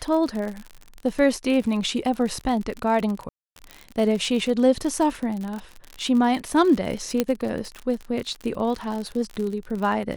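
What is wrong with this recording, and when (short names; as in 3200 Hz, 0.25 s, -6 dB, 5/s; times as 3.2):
crackle 54/s -28 dBFS
1.62 gap 3 ms
3.29–3.56 gap 0.272 s
7.2 pop -7 dBFS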